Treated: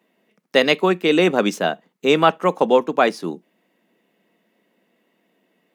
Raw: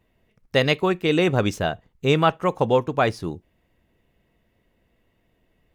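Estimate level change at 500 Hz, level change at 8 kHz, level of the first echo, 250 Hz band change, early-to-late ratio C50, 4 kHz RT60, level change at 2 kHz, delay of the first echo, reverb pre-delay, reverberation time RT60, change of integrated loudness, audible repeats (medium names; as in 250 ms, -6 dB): +4.0 dB, +4.0 dB, no echo, +3.5 dB, no reverb, no reverb, +4.0 dB, no echo, no reverb, no reverb, +3.5 dB, no echo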